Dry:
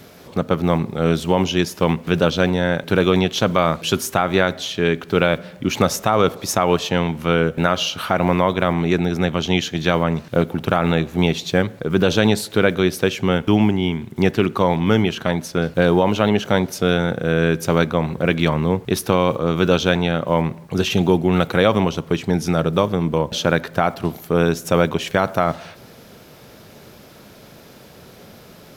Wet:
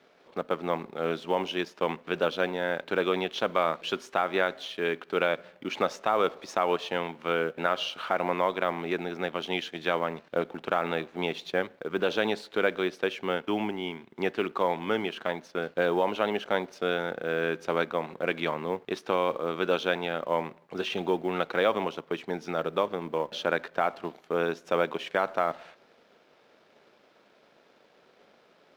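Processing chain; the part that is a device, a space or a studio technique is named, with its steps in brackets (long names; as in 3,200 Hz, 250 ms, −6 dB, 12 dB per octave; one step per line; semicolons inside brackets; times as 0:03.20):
phone line with mismatched companding (band-pass filter 370–3,400 Hz; mu-law and A-law mismatch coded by A)
level −7 dB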